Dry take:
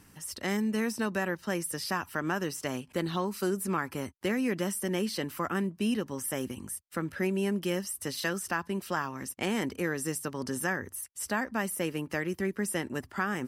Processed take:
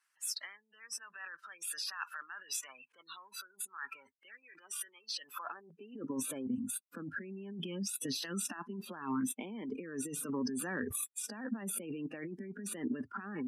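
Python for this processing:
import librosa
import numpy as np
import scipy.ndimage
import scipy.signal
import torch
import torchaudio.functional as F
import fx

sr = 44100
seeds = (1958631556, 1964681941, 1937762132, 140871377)

y = fx.cvsd(x, sr, bps=64000)
y = scipy.signal.sosfilt(scipy.signal.butter(4, 91.0, 'highpass', fs=sr, output='sos'), y)
y = fx.spec_gate(y, sr, threshold_db=-25, keep='strong')
y = fx.noise_reduce_blind(y, sr, reduce_db=25)
y = fx.comb(y, sr, ms=2.5, depth=0.5, at=(4.42, 5.04))
y = fx.dynamic_eq(y, sr, hz=520.0, q=0.72, threshold_db=-45.0, ratio=4.0, max_db=-8, at=(7.6, 8.53))
y = fx.over_compress(y, sr, threshold_db=-41.0, ratio=-1.0)
y = fx.filter_sweep_highpass(y, sr, from_hz=1400.0, to_hz=220.0, start_s=5.22, end_s=6.11, q=2.0)
y = fx.pre_swell(y, sr, db_per_s=23.0, at=(10.28, 10.95), fade=0.02)
y = y * 10.0 ** (-2.5 / 20.0)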